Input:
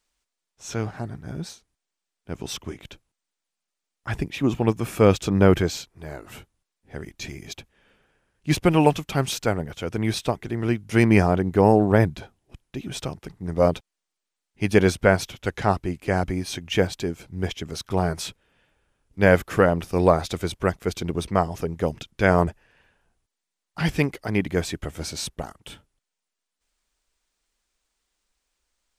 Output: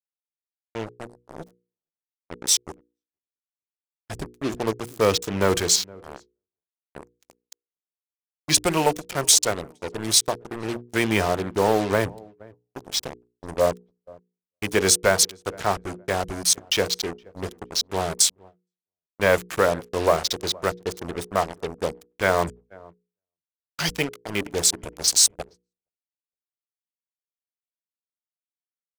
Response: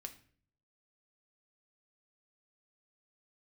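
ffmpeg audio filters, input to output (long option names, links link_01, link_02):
-filter_complex "[0:a]acrossover=split=270|4300[link_01][link_02][link_03];[link_03]dynaudnorm=framelen=270:gausssize=7:maxgain=13dB[link_04];[link_01][link_02][link_04]amix=inputs=3:normalize=0,bandreject=frequency=800:width=12,afwtdn=0.0316,equalizer=frequency=125:width_type=o:width=1:gain=-4,equalizer=frequency=250:width_type=o:width=1:gain=-4,equalizer=frequency=2000:width_type=o:width=1:gain=-3,equalizer=frequency=8000:width_type=o:width=1:gain=5,acrusher=bits=4:mix=0:aa=0.5,asplit=2[link_05][link_06];[link_06]adelay=467,lowpass=frequency=920:poles=1,volume=-23.5dB,asplit=2[link_07][link_08];[link_08]adelay=467,lowpass=frequency=920:poles=1,volume=0.32[link_09];[link_07][link_09]amix=inputs=2:normalize=0[link_10];[link_05][link_10]amix=inputs=2:normalize=0,asoftclip=type=tanh:threshold=-8dB,lowshelf=frequency=310:gain=-8,agate=range=-40dB:threshold=-47dB:ratio=16:detection=peak,bandreject=frequency=60:width_type=h:width=6,bandreject=frequency=120:width_type=h:width=6,bandreject=frequency=180:width_type=h:width=6,bandreject=frequency=240:width_type=h:width=6,bandreject=frequency=300:width_type=h:width=6,bandreject=frequency=360:width_type=h:width=6,bandreject=frequency=420:width_type=h:width=6,bandreject=frequency=480:width_type=h:width=6,volume=3dB"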